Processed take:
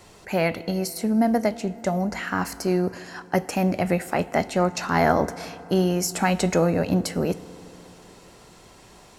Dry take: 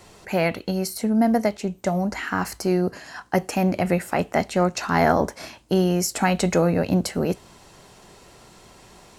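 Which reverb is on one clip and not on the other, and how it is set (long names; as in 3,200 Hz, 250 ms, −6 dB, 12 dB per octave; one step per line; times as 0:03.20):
feedback delay network reverb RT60 3.4 s, high-frequency decay 0.45×, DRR 16 dB
level −1 dB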